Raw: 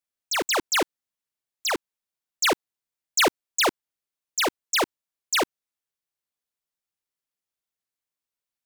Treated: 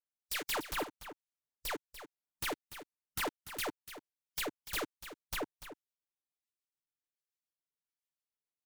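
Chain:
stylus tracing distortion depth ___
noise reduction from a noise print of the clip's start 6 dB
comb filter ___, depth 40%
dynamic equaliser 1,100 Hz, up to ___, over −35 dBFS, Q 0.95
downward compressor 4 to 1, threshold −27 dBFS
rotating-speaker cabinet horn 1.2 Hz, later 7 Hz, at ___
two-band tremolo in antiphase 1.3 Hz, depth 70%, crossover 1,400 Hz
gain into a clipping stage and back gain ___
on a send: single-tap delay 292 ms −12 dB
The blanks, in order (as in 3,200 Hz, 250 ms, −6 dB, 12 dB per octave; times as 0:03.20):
0.37 ms, 6.8 ms, +3 dB, 0:03.92, 32 dB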